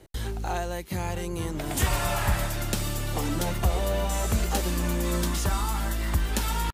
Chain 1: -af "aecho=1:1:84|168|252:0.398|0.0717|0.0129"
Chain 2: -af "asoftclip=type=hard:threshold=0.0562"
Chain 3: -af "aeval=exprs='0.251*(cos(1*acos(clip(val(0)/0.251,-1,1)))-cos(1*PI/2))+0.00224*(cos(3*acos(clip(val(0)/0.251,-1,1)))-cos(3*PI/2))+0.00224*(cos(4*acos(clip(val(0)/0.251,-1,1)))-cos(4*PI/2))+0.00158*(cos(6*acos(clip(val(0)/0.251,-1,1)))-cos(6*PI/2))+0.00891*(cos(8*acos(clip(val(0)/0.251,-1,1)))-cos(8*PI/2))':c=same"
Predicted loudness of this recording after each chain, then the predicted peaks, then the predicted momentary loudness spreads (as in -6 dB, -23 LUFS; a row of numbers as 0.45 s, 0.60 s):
-27.5 LUFS, -30.5 LUFS, -28.5 LUFS; -11.5 dBFS, -25.0 dBFS, -12.0 dBFS; 6 LU, 4 LU, 6 LU